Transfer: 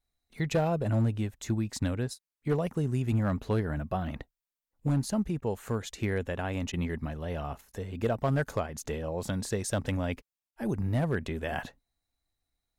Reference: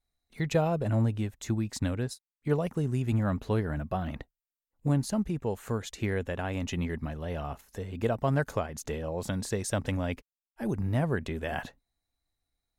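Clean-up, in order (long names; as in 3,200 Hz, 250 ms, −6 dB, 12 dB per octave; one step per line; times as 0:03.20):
clipped peaks rebuilt −20 dBFS
repair the gap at 0:05.41/0:06.72/0:07.72/0:10.51, 12 ms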